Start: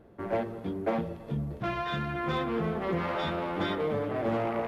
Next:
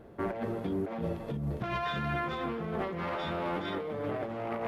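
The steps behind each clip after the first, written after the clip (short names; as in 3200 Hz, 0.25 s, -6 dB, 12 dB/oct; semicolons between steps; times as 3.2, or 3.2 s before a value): notches 50/100/150/200/250/300/350 Hz; negative-ratio compressor -35 dBFS, ratio -1; gain +1 dB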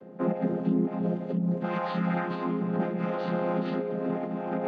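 chord vocoder minor triad, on F3; gain +6.5 dB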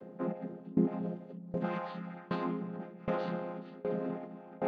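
dB-ramp tremolo decaying 1.3 Hz, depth 23 dB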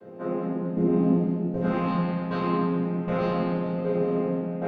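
reverb RT60 2.7 s, pre-delay 3 ms, DRR -11.5 dB; gain -2 dB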